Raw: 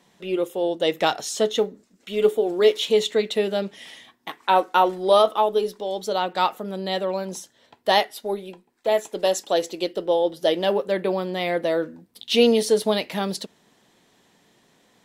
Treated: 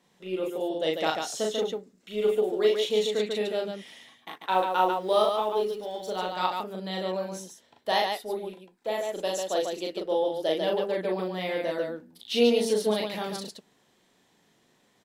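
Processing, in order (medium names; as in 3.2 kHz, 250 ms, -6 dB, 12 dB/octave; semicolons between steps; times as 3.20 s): 4.34–6.37 s: companding laws mixed up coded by A; loudspeakers at several distances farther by 13 m -2 dB, 49 m -4 dB; trim -8.5 dB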